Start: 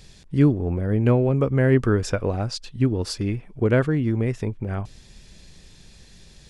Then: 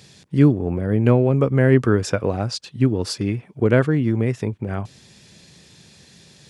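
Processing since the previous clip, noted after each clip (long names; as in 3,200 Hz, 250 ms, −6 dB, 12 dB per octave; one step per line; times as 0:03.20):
high-pass filter 96 Hz 24 dB per octave
level +3 dB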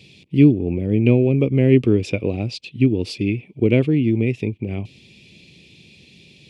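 drawn EQ curve 160 Hz 0 dB, 330 Hz +4 dB, 1,600 Hz −21 dB, 2,400 Hz +10 dB, 6,400 Hz −10 dB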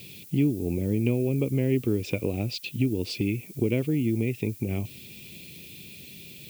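downward compressor 2.5 to 1, threshold −27 dBFS, peak gain reduction 13 dB
background noise violet −49 dBFS
level +1 dB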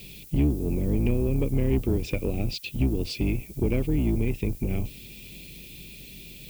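sub-octave generator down 2 octaves, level +1 dB
soft clipping −14 dBFS, distortion −21 dB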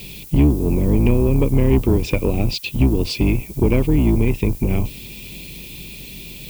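parametric band 990 Hz +8.5 dB 0.46 octaves
level +8.5 dB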